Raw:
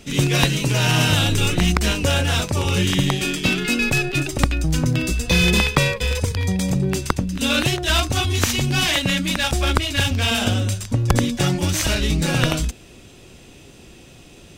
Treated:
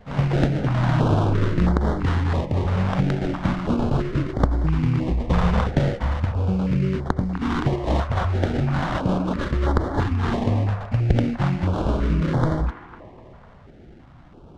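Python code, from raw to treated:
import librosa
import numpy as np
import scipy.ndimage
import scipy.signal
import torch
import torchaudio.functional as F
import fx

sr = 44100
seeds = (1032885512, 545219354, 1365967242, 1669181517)

y = fx.sample_hold(x, sr, seeds[0], rate_hz=2500.0, jitter_pct=20)
y = fx.spacing_loss(y, sr, db_at_10k=27)
y = fx.echo_wet_bandpass(y, sr, ms=250, feedback_pct=50, hz=980.0, wet_db=-8.0)
y = fx.filter_held_notch(y, sr, hz=3.0, low_hz=320.0, high_hz=2600.0)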